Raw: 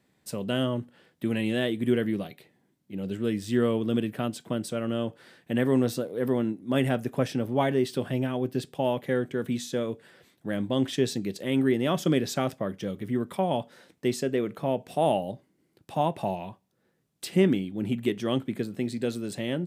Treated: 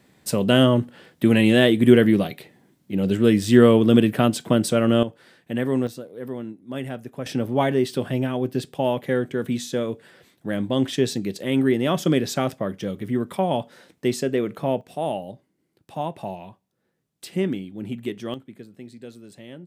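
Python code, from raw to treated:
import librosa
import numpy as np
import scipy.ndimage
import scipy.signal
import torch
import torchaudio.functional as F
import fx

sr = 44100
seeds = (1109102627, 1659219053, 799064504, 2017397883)

y = fx.gain(x, sr, db=fx.steps((0.0, 11.0), (5.03, 0.5), (5.87, -6.0), (7.26, 4.0), (14.81, -2.5), (18.34, -11.0)))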